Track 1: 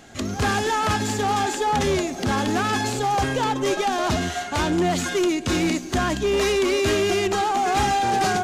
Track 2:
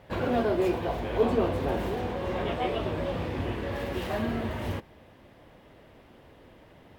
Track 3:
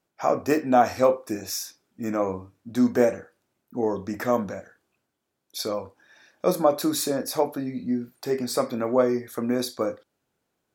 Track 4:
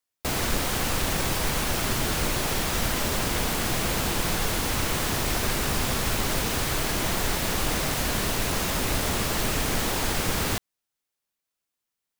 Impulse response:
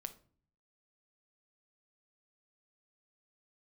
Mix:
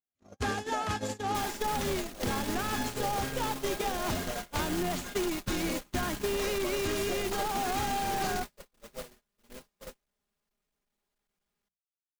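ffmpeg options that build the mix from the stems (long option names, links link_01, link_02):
-filter_complex "[0:a]volume=-0.5dB[link_01];[1:a]adelay=1950,volume=-14.5dB[link_02];[2:a]volume=-6.5dB[link_03];[3:a]bandreject=frequency=60:width_type=h:width=6,bandreject=frequency=120:width_type=h:width=6,bandreject=frequency=180:width_type=h:width=6,aecho=1:1:4.9:0.84,asoftclip=type=hard:threshold=-26.5dB,adelay=1100,volume=1.5dB[link_04];[link_02][link_03]amix=inputs=2:normalize=0,adynamicequalizer=threshold=0.00794:dfrequency=530:dqfactor=2.9:tfrequency=530:tqfactor=2.9:attack=5:release=100:ratio=0.375:range=4:mode=boostabove:tftype=bell,alimiter=limit=-21dB:level=0:latency=1:release=313,volume=0dB[link_05];[link_01][link_04][link_05]amix=inputs=3:normalize=0,agate=range=-58dB:threshold=-21dB:ratio=16:detection=peak,acompressor=threshold=-29dB:ratio=6"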